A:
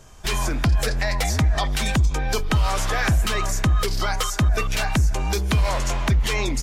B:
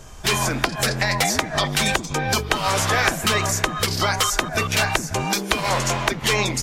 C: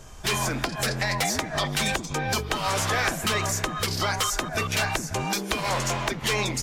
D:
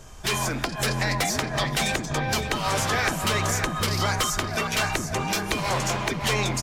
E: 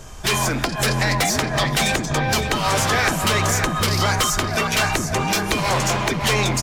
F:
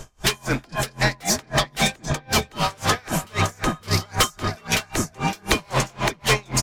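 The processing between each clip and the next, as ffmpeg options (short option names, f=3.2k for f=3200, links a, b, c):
-af "afftfilt=real='re*lt(hypot(re,im),0.398)':imag='im*lt(hypot(re,im),0.398)':win_size=1024:overlap=0.75,volume=6dB"
-af "asoftclip=type=tanh:threshold=-13dB,volume=-3.5dB"
-filter_complex "[0:a]asplit=2[a][b];[b]adelay=562,lowpass=f=2.9k:p=1,volume=-6dB,asplit=2[c][d];[d]adelay=562,lowpass=f=2.9k:p=1,volume=0.48,asplit=2[e][f];[f]adelay=562,lowpass=f=2.9k:p=1,volume=0.48,asplit=2[g][h];[h]adelay=562,lowpass=f=2.9k:p=1,volume=0.48,asplit=2[i][j];[j]adelay=562,lowpass=f=2.9k:p=1,volume=0.48,asplit=2[k][l];[l]adelay=562,lowpass=f=2.9k:p=1,volume=0.48[m];[a][c][e][g][i][k][m]amix=inputs=7:normalize=0"
-af "asoftclip=type=tanh:threshold=-17.5dB,volume=6.5dB"
-af "aeval=exprs='val(0)*pow(10,-33*(0.5-0.5*cos(2*PI*3.8*n/s))/20)':c=same,volume=3dB"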